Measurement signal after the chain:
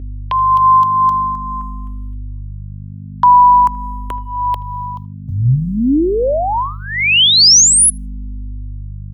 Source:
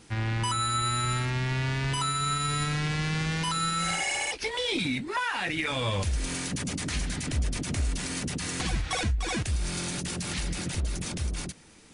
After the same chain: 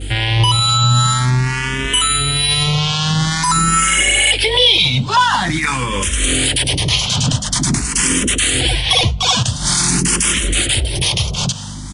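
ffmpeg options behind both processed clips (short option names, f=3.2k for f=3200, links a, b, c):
-filter_complex "[0:a]acompressor=threshold=-33dB:ratio=2.5,agate=range=-33dB:threshold=-54dB:ratio=3:detection=peak,acrossover=split=310|3000[a][b][c];[a]acompressor=threshold=-38dB:ratio=6[d];[d][b][c]amix=inputs=3:normalize=0,equalizer=f=125:t=o:w=0.33:g=9,equalizer=f=1k:t=o:w=0.33:g=5,equalizer=f=3.15k:t=o:w=0.33:g=10,acrossover=split=640[e][f];[e]aeval=exprs='val(0)*(1-0.5/2+0.5/2*cos(2*PI*2.2*n/s))':c=same[g];[f]aeval=exprs='val(0)*(1-0.5/2-0.5/2*cos(2*PI*2.2*n/s))':c=same[h];[g][h]amix=inputs=2:normalize=0,highshelf=f=4.9k:g=8.5,asplit=2[i][j];[j]adelay=79,lowpass=f=2.1k:p=1,volume=-22dB,asplit=2[k][l];[l]adelay=79,lowpass=f=2.1k:p=1,volume=0.16[m];[k][m]amix=inputs=2:normalize=0[n];[i][n]amix=inputs=2:normalize=0,aeval=exprs='val(0)+0.00501*(sin(2*PI*50*n/s)+sin(2*PI*2*50*n/s)/2+sin(2*PI*3*50*n/s)/3+sin(2*PI*4*50*n/s)/4+sin(2*PI*5*50*n/s)/5)':c=same,alimiter=level_in=24.5dB:limit=-1dB:release=50:level=0:latency=1,asplit=2[o][p];[p]afreqshift=0.47[q];[o][q]amix=inputs=2:normalize=1,volume=-1dB"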